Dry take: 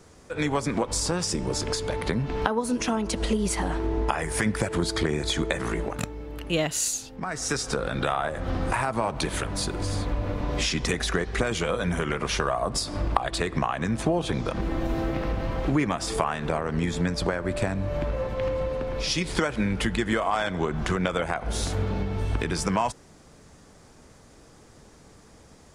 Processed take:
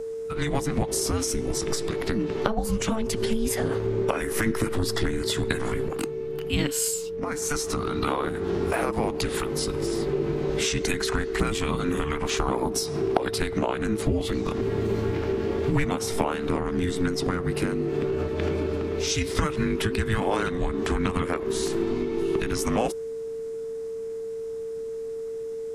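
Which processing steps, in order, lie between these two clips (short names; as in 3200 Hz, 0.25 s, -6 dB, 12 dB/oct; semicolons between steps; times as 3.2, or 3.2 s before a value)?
formant shift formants +3 st; whine 890 Hz -30 dBFS; frequency shift -440 Hz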